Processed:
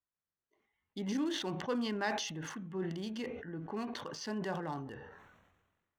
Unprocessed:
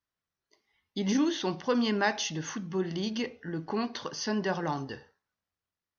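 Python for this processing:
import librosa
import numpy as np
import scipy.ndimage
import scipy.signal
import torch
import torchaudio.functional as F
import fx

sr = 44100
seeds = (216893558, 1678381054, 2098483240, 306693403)

y = fx.wiener(x, sr, points=9)
y = fx.sustainer(y, sr, db_per_s=43.0)
y = F.gain(torch.from_numpy(y), -8.0).numpy()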